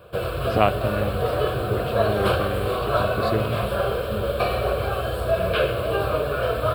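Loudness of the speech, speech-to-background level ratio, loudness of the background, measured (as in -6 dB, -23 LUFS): -28.0 LUFS, -4.0 dB, -24.0 LUFS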